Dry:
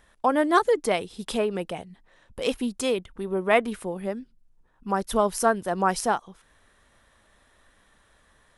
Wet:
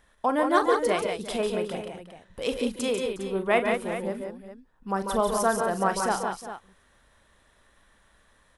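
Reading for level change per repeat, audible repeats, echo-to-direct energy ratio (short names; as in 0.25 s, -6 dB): no steady repeat, 5, -2.0 dB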